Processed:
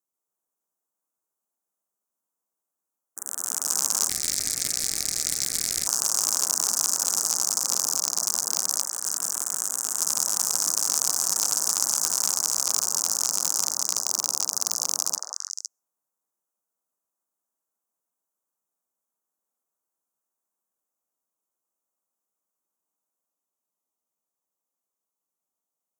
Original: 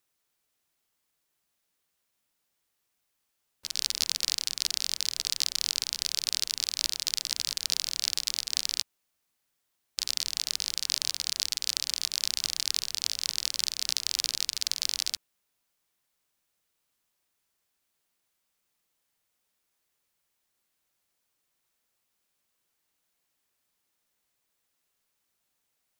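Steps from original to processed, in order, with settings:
high-pass filter 170 Hz 24 dB per octave
noise gate with hold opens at −49 dBFS
Chebyshev band-stop filter 1,200–6,300 Hz, order 3
echo through a band-pass that steps 170 ms, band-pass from 710 Hz, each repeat 1.4 octaves, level −1 dB
sine wavefolder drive 12 dB, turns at −4.5 dBFS
delay with pitch and tempo change per echo 140 ms, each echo +2 semitones, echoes 2
0:04.09–0:05.87: ring modulation 980 Hz
level −2.5 dB

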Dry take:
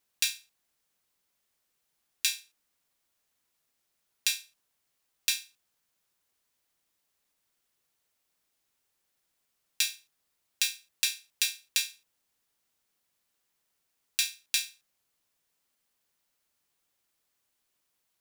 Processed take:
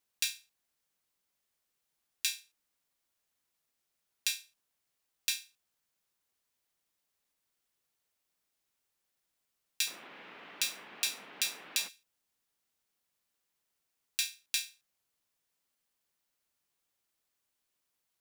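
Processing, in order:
0:09.86–0:11.87: noise in a band 180–2,800 Hz −47 dBFS
level −4.5 dB

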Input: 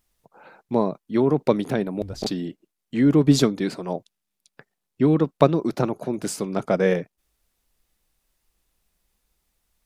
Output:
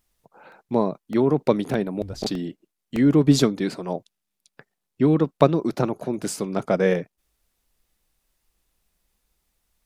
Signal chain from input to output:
regular buffer underruns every 0.61 s, samples 64, repeat, from 0:00.52

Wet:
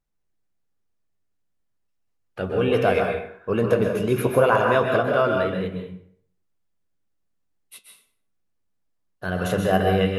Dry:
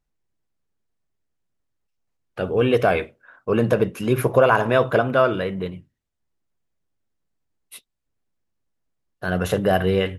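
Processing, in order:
flanger 1.8 Hz, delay 9.7 ms, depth 1 ms, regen +77%
dense smooth reverb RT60 0.6 s, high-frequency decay 0.75×, pre-delay 115 ms, DRR 2 dB
level +1.5 dB

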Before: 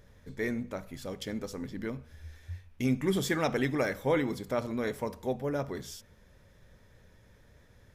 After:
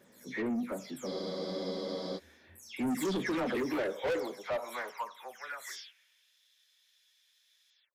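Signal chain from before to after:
every frequency bin delayed by itself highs early, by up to 247 ms
high-pass filter sweep 260 Hz → 3,500 Hz, 0:03.42–0:06.37
soft clipping −28.5 dBFS, distortion −6 dB
frozen spectrum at 0:01.09, 1.07 s

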